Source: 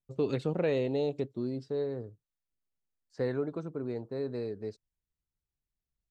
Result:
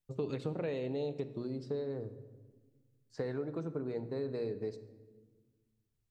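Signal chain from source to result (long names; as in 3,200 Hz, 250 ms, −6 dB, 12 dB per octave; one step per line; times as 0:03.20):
mains-hum notches 60/120/180/240/300/360 Hz
downward compressor, threshold −36 dBFS, peak gain reduction 11 dB
rectangular room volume 1,200 cubic metres, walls mixed, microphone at 0.49 metres
level +2 dB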